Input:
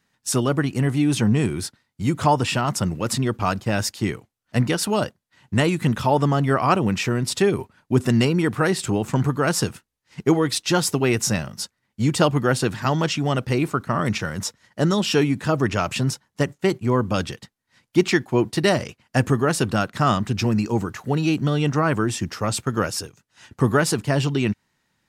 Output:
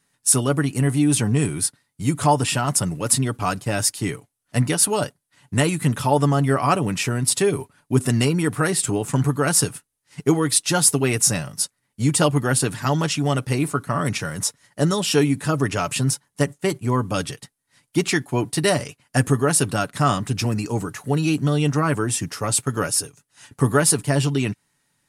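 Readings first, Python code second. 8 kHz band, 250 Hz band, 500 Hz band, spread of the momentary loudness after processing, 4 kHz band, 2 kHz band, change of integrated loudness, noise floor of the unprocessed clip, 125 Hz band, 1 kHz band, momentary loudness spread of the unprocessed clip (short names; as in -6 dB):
+8.5 dB, -1.0 dB, -1.0 dB, 8 LU, +1.0 dB, -0.5 dB, +1.0 dB, -76 dBFS, +1.0 dB, -0.5 dB, 7 LU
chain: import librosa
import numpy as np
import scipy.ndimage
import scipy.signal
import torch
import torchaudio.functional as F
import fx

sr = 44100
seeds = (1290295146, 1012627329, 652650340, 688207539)

y = fx.peak_eq(x, sr, hz=9800.0, db=15.0, octaves=0.66)
y = y + 0.42 * np.pad(y, (int(7.0 * sr / 1000.0), 0))[:len(y)]
y = y * 10.0 ** (-1.5 / 20.0)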